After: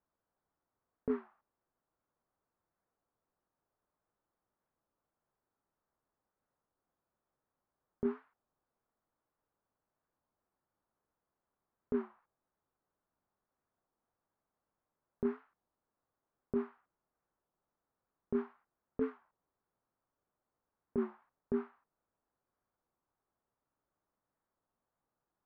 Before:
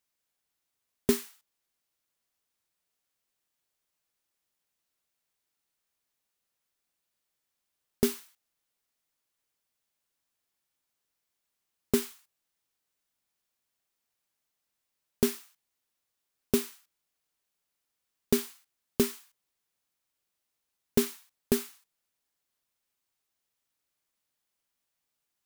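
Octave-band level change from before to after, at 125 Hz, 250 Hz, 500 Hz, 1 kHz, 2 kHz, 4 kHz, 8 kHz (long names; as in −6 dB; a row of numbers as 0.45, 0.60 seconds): −12.0 dB, −7.0 dB, −7.0 dB, −4.0 dB, −12.5 dB, below −30 dB, below −35 dB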